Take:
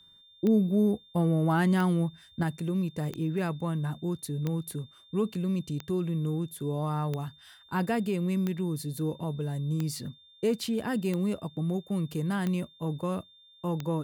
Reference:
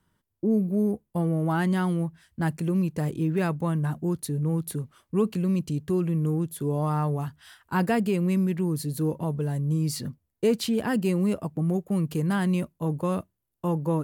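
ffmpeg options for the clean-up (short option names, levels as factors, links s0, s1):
-af "adeclick=t=4,bandreject=f=3600:w=30,asetnsamples=n=441:p=0,asendcmd='2.43 volume volume 4.5dB',volume=1"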